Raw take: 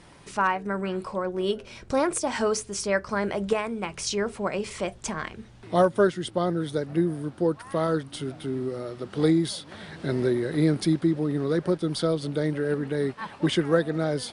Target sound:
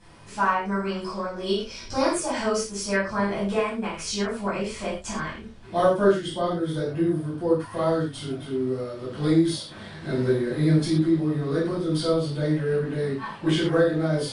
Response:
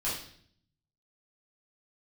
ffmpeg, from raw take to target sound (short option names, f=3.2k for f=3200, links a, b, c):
-filter_complex "[0:a]asettb=1/sr,asplit=3[a][b][c];[a]atrim=end=0.644[d];[b]atrim=start=0.64:end=2.12,asetpts=PTS-STARTPTS,afade=t=in:d=0.004:c=qsin,afade=t=out:st=1.476:d=0.004:c=qsin,equalizer=f=5.3k:t=o:w=0.75:g=12[e];[c]atrim=start=2.116[f];[d][e]acrossfade=d=0.004:c1=hsin:c2=qsin[g];[g][f]acrossfade=d=0.004:c1=qsin:c2=hsin[h];[1:a]atrim=start_sample=2205,atrim=end_sample=6174[i];[h][i]afir=irnorm=-1:irlink=0,volume=-5dB"